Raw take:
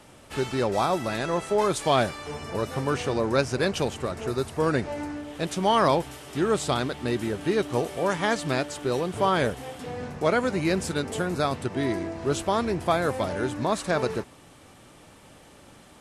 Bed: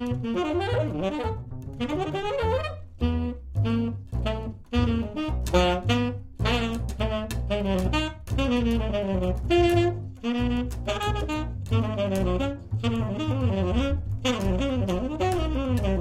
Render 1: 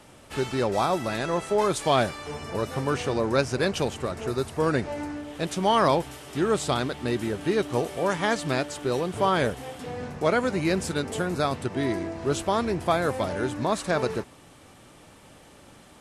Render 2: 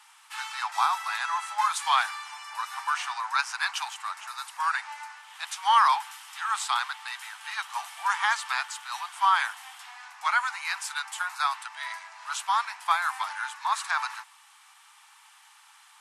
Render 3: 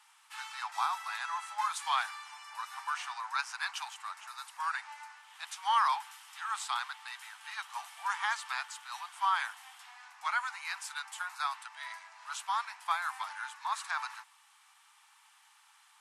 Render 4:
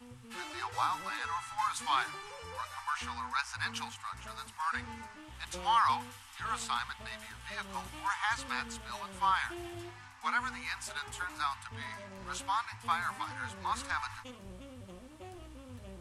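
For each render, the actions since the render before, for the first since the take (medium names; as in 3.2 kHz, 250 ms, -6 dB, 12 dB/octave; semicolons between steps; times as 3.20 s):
no audible change
steep high-pass 840 Hz 72 dB/octave; dynamic bell 1.2 kHz, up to +5 dB, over -39 dBFS, Q 0.92
trim -7.5 dB
add bed -24 dB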